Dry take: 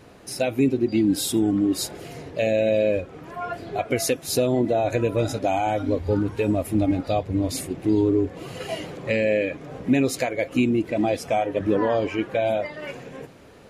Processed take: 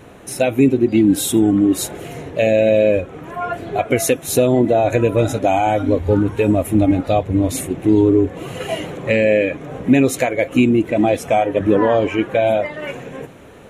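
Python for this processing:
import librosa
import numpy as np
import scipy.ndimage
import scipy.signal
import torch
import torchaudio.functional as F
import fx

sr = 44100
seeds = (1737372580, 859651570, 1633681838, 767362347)

y = fx.peak_eq(x, sr, hz=4800.0, db=-14.5, octaves=0.31)
y = y * 10.0 ** (7.0 / 20.0)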